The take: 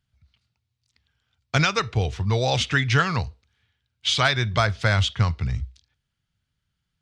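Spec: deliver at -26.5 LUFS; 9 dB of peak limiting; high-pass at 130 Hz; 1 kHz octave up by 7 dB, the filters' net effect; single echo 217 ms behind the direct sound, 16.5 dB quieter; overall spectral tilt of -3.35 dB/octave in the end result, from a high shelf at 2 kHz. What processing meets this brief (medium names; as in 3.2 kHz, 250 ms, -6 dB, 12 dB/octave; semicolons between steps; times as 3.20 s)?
high-pass 130 Hz; peaking EQ 1 kHz +8.5 dB; treble shelf 2 kHz +4.5 dB; peak limiter -9 dBFS; delay 217 ms -16.5 dB; trim -4 dB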